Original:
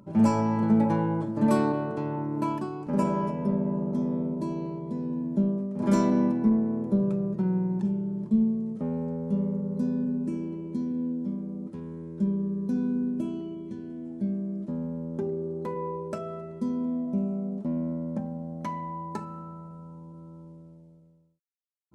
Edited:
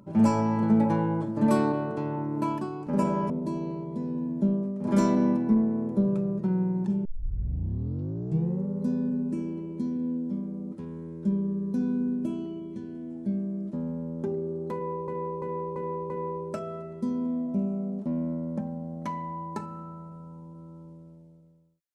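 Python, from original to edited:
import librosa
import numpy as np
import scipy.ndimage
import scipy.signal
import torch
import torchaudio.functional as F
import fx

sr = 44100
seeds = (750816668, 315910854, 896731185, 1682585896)

y = fx.edit(x, sr, fx.cut(start_s=3.3, length_s=0.95),
    fx.tape_start(start_s=8.0, length_s=1.62),
    fx.repeat(start_s=15.69, length_s=0.34, count=5), tone=tone)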